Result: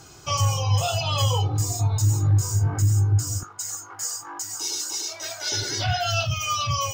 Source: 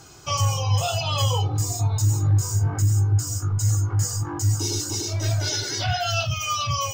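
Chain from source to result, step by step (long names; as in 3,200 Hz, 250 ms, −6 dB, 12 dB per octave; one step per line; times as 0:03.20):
0:03.43–0:05.52: high-pass filter 740 Hz 12 dB per octave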